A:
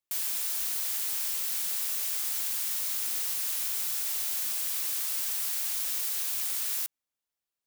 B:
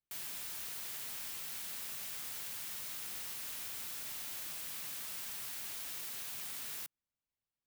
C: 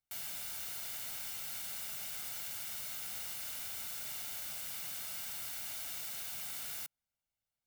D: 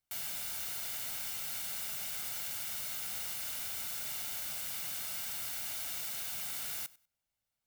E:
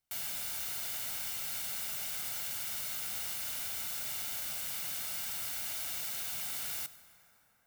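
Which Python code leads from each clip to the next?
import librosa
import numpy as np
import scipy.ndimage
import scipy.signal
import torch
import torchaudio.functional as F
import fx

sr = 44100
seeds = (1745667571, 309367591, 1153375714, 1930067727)

y1 = fx.bass_treble(x, sr, bass_db=11, treble_db=-7)
y1 = y1 * 10.0 ** (-5.5 / 20.0)
y2 = y1 + 0.47 * np.pad(y1, (int(1.4 * sr / 1000.0), 0))[:len(y1)]
y3 = fx.echo_feedback(y2, sr, ms=97, feedback_pct=22, wet_db=-21.5)
y3 = y3 * 10.0 ** (3.0 / 20.0)
y4 = fx.rev_plate(y3, sr, seeds[0], rt60_s=4.4, hf_ratio=0.5, predelay_ms=0, drr_db=14.0)
y4 = y4 * 10.0 ** (1.0 / 20.0)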